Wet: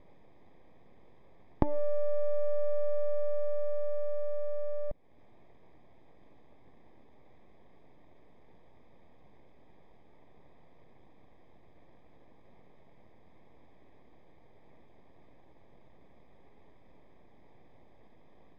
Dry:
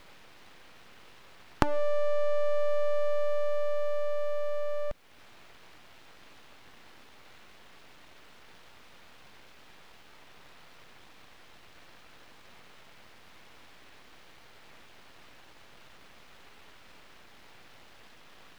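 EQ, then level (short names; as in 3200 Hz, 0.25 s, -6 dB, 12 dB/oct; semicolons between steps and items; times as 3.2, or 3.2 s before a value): running mean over 31 samples; 0.0 dB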